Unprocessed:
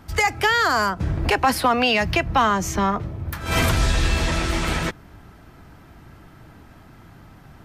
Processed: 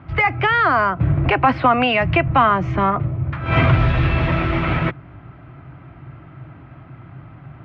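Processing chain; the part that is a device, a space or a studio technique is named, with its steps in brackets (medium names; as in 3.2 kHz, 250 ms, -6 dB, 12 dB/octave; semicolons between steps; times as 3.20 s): bass cabinet (cabinet simulation 74–2400 Hz, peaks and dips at 81 Hz -3 dB, 130 Hz +9 dB, 210 Hz -9 dB, 450 Hz -9 dB, 880 Hz -6 dB, 1.7 kHz -7 dB); trim +7 dB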